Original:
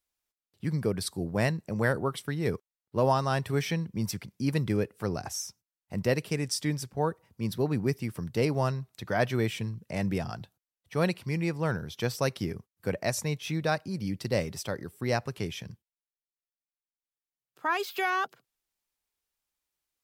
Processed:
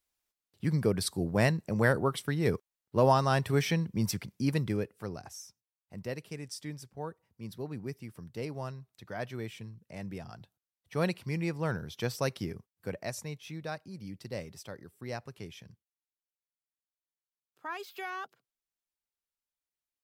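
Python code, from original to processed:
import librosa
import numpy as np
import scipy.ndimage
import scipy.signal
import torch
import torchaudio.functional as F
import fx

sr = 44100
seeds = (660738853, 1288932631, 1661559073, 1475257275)

y = fx.gain(x, sr, db=fx.line((4.32, 1.0), (5.37, -11.0), (10.21, -11.0), (10.95, -3.0), (12.3, -3.0), (13.5, -10.5)))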